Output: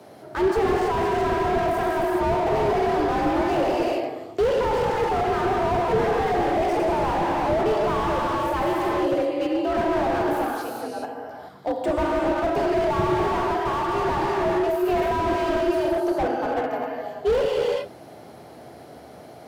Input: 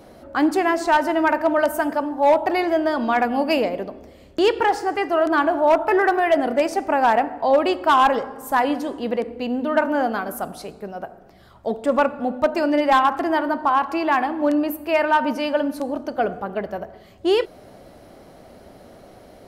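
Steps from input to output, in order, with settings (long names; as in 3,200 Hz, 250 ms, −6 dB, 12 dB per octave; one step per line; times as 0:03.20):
frequency shifter +68 Hz
reverb whose tail is shaped and stops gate 450 ms flat, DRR 0 dB
slew-rate limiting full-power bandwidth 71 Hz
level −1 dB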